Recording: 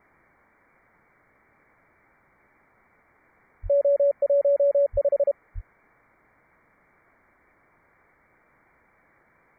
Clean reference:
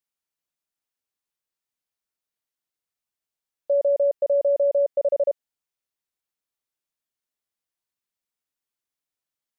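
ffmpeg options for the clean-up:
-filter_complex "[0:a]asplit=3[a][b][c];[a]afade=t=out:st=3.62:d=0.02[d];[b]highpass=f=140:w=0.5412,highpass=f=140:w=1.3066,afade=t=in:st=3.62:d=0.02,afade=t=out:st=3.74:d=0.02[e];[c]afade=t=in:st=3.74:d=0.02[f];[d][e][f]amix=inputs=3:normalize=0,asplit=3[g][h][i];[g]afade=t=out:st=4.92:d=0.02[j];[h]highpass=f=140:w=0.5412,highpass=f=140:w=1.3066,afade=t=in:st=4.92:d=0.02,afade=t=out:st=5.04:d=0.02[k];[i]afade=t=in:st=5.04:d=0.02[l];[j][k][l]amix=inputs=3:normalize=0,asplit=3[m][n][o];[m]afade=t=out:st=5.54:d=0.02[p];[n]highpass=f=140:w=0.5412,highpass=f=140:w=1.3066,afade=t=in:st=5.54:d=0.02,afade=t=out:st=5.66:d=0.02[q];[o]afade=t=in:st=5.66:d=0.02[r];[p][q][r]amix=inputs=3:normalize=0,afwtdn=0.0022"

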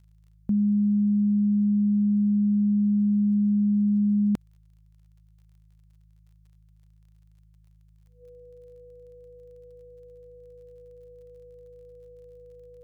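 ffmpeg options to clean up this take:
-af "adeclick=t=4,bandreject=f=53:t=h:w=4,bandreject=f=106:t=h:w=4,bandreject=f=159:t=h:w=4,bandreject=f=490:w=30"

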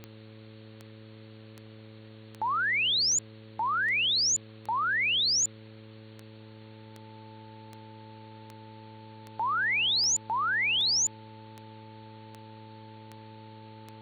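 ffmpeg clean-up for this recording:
-af "adeclick=t=4,bandreject=f=109.3:t=h:w=4,bandreject=f=218.6:t=h:w=4,bandreject=f=327.9:t=h:w=4,bandreject=f=437.2:t=h:w=4,bandreject=f=546.5:t=h:w=4,bandreject=f=880:w=30,afwtdn=0.0022"

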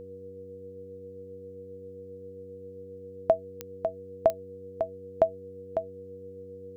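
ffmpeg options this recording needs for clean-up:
-af "adeclick=t=4,bandreject=f=94.5:t=h:w=4,bandreject=f=189:t=h:w=4,bandreject=f=283.5:t=h:w=4,bandreject=f=378:t=h:w=4,bandreject=f=472.5:t=h:w=4,bandreject=f=480:w=30,agate=range=-21dB:threshold=-37dB"

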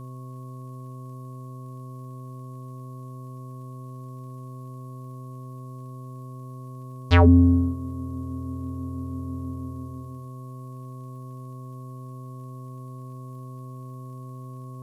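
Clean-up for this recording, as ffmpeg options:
-af "adeclick=t=4,bandreject=f=127.9:t=h:w=4,bandreject=f=255.8:t=h:w=4,bandreject=f=383.7:t=h:w=4,bandreject=f=511.6:t=h:w=4,bandreject=f=639.5:t=h:w=4,bandreject=f=1.1k:w=30,agate=range=-21dB:threshold=-31dB"

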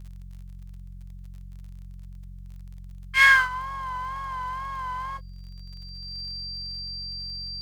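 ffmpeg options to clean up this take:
-af "adeclick=t=4,bandreject=f=45.3:t=h:w=4,bandreject=f=90.6:t=h:w=4,bandreject=f=135.9:t=h:w=4,bandreject=f=181.2:t=h:w=4,bandreject=f=4.7k:w=30"

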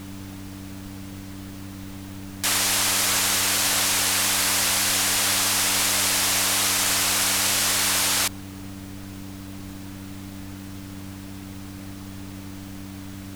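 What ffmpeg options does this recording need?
-af "bandreject=f=96.6:t=h:w=4,bandreject=f=193.2:t=h:w=4,bandreject=f=289.8:t=h:w=4,afftdn=nr=30:nf=-37"

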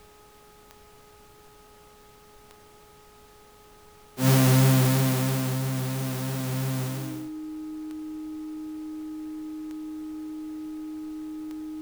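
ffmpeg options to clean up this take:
-af "adeclick=t=4,bandreject=f=419.2:t=h:w=4,bandreject=f=838.4:t=h:w=4,bandreject=f=1.2576k:t=h:w=4,bandreject=f=310:w=30,agate=range=-21dB:threshold=-45dB"

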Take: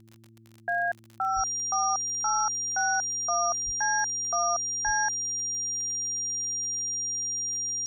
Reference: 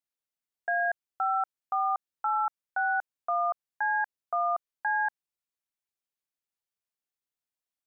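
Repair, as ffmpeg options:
-filter_complex "[0:a]adeclick=t=4,bandreject=f=112.3:t=h:w=4,bandreject=f=224.6:t=h:w=4,bandreject=f=336.9:t=h:w=4,bandreject=f=5.7k:w=30,asplit=3[a][b][c];[a]afade=t=out:st=1.35:d=0.02[d];[b]highpass=f=140:w=0.5412,highpass=f=140:w=1.3066,afade=t=in:st=1.35:d=0.02,afade=t=out:st=1.47:d=0.02[e];[c]afade=t=in:st=1.47:d=0.02[f];[d][e][f]amix=inputs=3:normalize=0,asplit=3[g][h][i];[g]afade=t=out:st=3.65:d=0.02[j];[h]highpass=f=140:w=0.5412,highpass=f=140:w=1.3066,afade=t=in:st=3.65:d=0.02,afade=t=out:st=3.77:d=0.02[k];[i]afade=t=in:st=3.77:d=0.02[l];[j][k][l]amix=inputs=3:normalize=0,asplit=3[m][n][o];[m]afade=t=out:st=4.85:d=0.02[p];[n]highpass=f=140:w=0.5412,highpass=f=140:w=1.3066,afade=t=in:st=4.85:d=0.02,afade=t=out:st=4.97:d=0.02[q];[o]afade=t=in:st=4.97:d=0.02[r];[p][q][r]amix=inputs=3:normalize=0"

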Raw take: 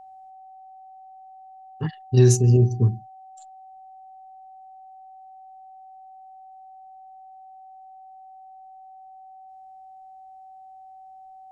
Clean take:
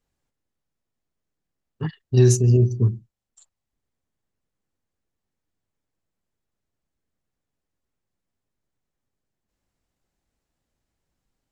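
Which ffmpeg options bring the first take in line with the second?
-af "bandreject=f=760:w=30"

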